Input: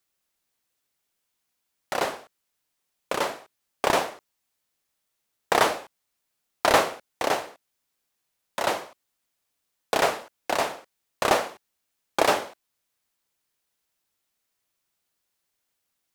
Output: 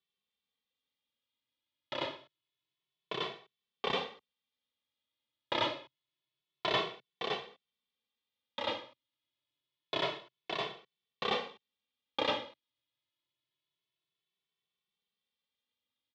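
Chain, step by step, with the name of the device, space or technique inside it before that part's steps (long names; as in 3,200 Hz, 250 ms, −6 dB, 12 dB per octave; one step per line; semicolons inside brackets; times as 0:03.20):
barber-pole flanger into a guitar amplifier (barber-pole flanger 2.2 ms +0.27 Hz; soft clipping −14 dBFS, distortion −19 dB; loudspeaker in its box 91–4,200 Hz, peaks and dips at 130 Hz +6 dB, 720 Hz −9 dB, 1,500 Hz −9 dB, 3,400 Hz +10 dB)
level −5 dB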